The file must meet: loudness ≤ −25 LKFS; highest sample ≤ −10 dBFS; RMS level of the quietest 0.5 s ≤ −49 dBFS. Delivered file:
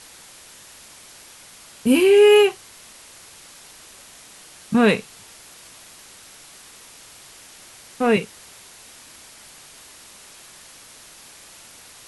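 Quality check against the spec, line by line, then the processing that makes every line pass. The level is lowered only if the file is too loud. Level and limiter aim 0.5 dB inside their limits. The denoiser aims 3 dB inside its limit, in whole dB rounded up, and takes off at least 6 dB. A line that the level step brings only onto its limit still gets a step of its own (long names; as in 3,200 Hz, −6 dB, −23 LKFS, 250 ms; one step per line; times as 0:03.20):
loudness −17.0 LKFS: out of spec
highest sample −4.5 dBFS: out of spec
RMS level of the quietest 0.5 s −45 dBFS: out of spec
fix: level −8.5 dB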